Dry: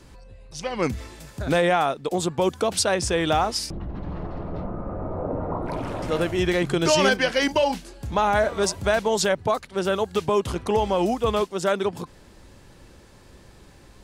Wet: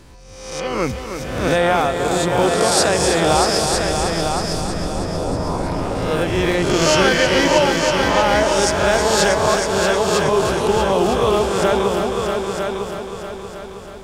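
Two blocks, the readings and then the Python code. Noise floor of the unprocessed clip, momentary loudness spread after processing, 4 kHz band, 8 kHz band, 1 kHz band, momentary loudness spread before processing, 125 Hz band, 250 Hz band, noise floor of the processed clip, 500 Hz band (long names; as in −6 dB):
−50 dBFS, 12 LU, +8.0 dB, +9.0 dB, +7.0 dB, 13 LU, +6.5 dB, +6.0 dB, −34 dBFS, +6.5 dB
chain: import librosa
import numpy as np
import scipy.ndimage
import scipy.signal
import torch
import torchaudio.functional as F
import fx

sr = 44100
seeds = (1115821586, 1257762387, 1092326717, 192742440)

y = fx.spec_swells(x, sr, rise_s=0.9)
y = fx.dmg_crackle(y, sr, seeds[0], per_s=85.0, level_db=-51.0)
y = fx.echo_heads(y, sr, ms=318, heads='all three', feedback_pct=48, wet_db=-8.0)
y = y * librosa.db_to_amplitude(1.5)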